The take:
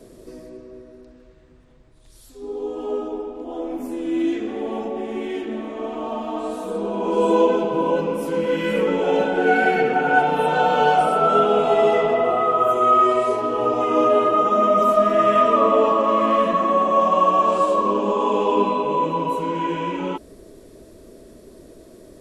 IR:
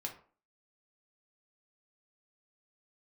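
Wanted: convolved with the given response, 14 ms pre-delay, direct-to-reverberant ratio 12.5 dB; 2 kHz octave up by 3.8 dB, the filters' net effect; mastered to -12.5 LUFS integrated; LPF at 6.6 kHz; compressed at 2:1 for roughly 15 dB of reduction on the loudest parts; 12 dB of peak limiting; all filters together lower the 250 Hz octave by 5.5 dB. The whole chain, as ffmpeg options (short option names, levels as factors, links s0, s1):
-filter_complex "[0:a]lowpass=6600,equalizer=f=250:t=o:g=-8,equalizer=f=2000:t=o:g=6,acompressor=threshold=0.01:ratio=2,alimiter=level_in=2.11:limit=0.0631:level=0:latency=1,volume=0.473,asplit=2[s0][s1];[1:a]atrim=start_sample=2205,adelay=14[s2];[s1][s2]afir=irnorm=-1:irlink=0,volume=0.266[s3];[s0][s3]amix=inputs=2:normalize=0,volume=20"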